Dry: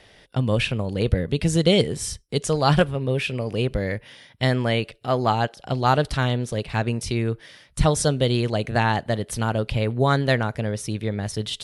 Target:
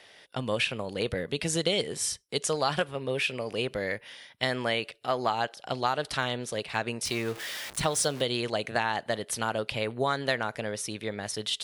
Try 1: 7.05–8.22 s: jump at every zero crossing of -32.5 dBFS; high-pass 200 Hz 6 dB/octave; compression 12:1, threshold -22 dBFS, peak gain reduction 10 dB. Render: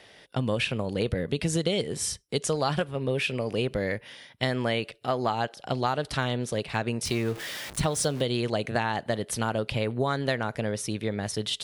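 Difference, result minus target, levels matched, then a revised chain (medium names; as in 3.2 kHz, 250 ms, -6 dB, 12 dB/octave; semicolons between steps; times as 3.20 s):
250 Hz band +4.0 dB
7.05–8.22 s: jump at every zero crossing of -32.5 dBFS; high-pass 660 Hz 6 dB/octave; compression 12:1, threshold -22 dBFS, peak gain reduction 8.5 dB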